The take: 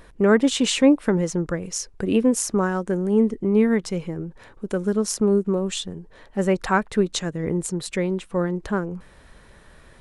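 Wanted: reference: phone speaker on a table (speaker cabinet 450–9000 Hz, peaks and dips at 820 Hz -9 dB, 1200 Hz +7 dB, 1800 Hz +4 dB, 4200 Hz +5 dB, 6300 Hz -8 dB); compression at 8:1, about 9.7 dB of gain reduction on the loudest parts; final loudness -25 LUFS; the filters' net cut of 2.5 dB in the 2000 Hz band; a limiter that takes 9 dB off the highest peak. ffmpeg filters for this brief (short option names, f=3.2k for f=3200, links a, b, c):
-af "equalizer=f=2k:t=o:g=-7.5,acompressor=threshold=-21dB:ratio=8,alimiter=limit=-19.5dB:level=0:latency=1,highpass=f=450:w=0.5412,highpass=f=450:w=1.3066,equalizer=f=820:t=q:w=4:g=-9,equalizer=f=1.2k:t=q:w=4:g=7,equalizer=f=1.8k:t=q:w=4:g=4,equalizer=f=4.2k:t=q:w=4:g=5,equalizer=f=6.3k:t=q:w=4:g=-8,lowpass=f=9k:w=0.5412,lowpass=f=9k:w=1.3066,volume=10dB"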